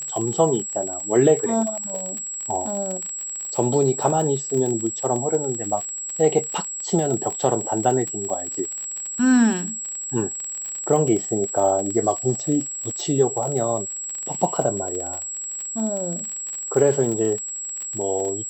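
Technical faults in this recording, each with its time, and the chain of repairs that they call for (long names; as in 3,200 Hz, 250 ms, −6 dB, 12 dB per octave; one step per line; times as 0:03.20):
surface crackle 34 per second −26 dBFS
whistle 7,700 Hz −28 dBFS
0:01.00: drop-out 3.3 ms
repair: click removal
notch filter 7,700 Hz, Q 30
repair the gap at 0:01.00, 3.3 ms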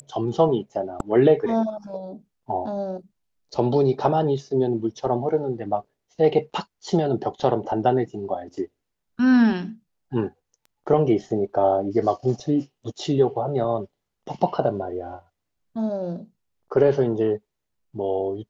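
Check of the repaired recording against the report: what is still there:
none of them is left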